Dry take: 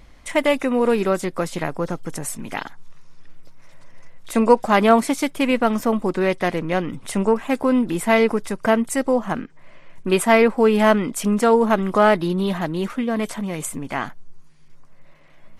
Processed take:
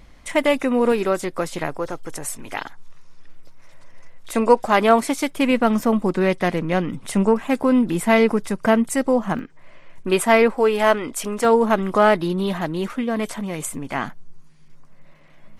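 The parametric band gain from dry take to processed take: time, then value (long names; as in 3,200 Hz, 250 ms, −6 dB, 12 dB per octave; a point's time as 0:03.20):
parametric band 190 Hz 0.73 octaves
+2 dB
from 0:00.92 −4.5 dB
from 0:01.78 −12.5 dB
from 0:02.60 −5 dB
from 0:05.38 +3.5 dB
from 0:09.39 −3 dB
from 0:10.55 −12 dB
from 0:11.45 −1.5 dB
from 0:13.95 +5 dB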